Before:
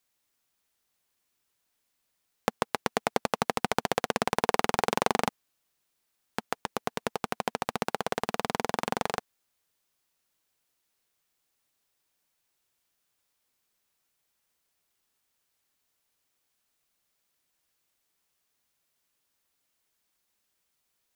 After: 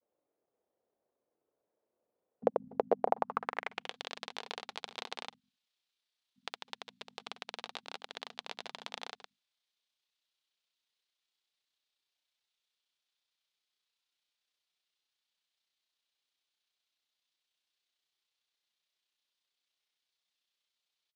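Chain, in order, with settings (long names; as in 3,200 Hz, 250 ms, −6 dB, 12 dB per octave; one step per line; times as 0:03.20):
tilt shelving filter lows +7.5 dB
mains-hum notches 50/100/150/200/250 Hz
granular cloud 62 ms, grains 31 per second
downward compressor 3 to 1, threshold −29 dBFS, peak gain reduction 10 dB
band-pass filter sweep 520 Hz → 3,700 Hz, 0:02.91–0:03.96
level +8.5 dB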